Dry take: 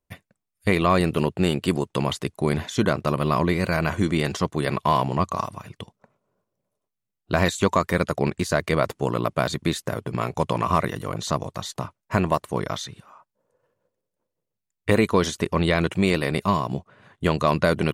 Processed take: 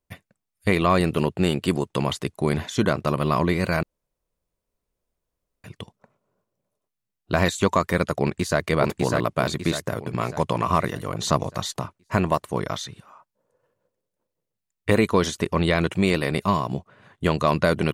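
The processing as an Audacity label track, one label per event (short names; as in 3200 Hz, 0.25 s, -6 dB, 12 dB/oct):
3.830000	5.640000	room tone
8.200000	8.650000	echo throw 0.6 s, feedback 45%, level -3 dB
11.200000	11.790000	gain +3.5 dB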